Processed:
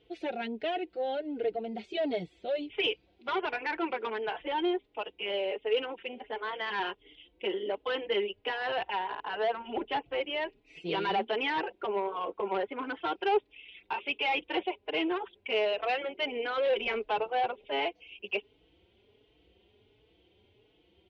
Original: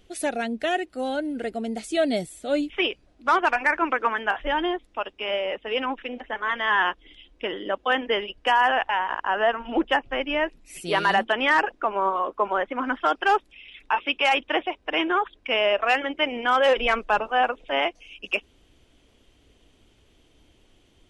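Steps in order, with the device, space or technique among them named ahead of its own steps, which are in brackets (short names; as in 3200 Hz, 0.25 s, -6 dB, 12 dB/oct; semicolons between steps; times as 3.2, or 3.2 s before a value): 2.83–3.29 high shelf 2600 Hz +10.5 dB; barber-pole flanger into a guitar amplifier (endless flanger 4.2 ms +1.4 Hz; soft clip -22 dBFS, distortion -11 dB; speaker cabinet 84–3500 Hz, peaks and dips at 150 Hz -5 dB, 250 Hz -9 dB, 420 Hz +7 dB, 600 Hz -4 dB, 1200 Hz -10 dB, 1700 Hz -8 dB)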